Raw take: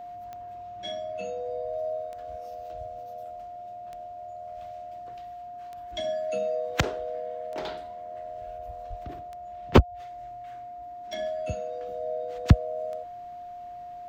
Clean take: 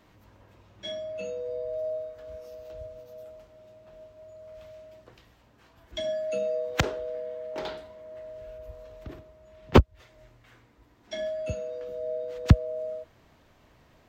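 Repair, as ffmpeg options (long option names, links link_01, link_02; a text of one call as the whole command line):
ffmpeg -i in.wav -filter_complex "[0:a]adeclick=threshold=4,bandreject=frequency=710:width=30,asplit=3[link_01][link_02][link_03];[link_01]afade=type=out:start_time=8.89:duration=0.02[link_04];[link_02]highpass=frequency=140:width=0.5412,highpass=frequency=140:width=1.3066,afade=type=in:start_time=8.89:duration=0.02,afade=type=out:start_time=9.01:duration=0.02[link_05];[link_03]afade=type=in:start_time=9.01:duration=0.02[link_06];[link_04][link_05][link_06]amix=inputs=3:normalize=0" out.wav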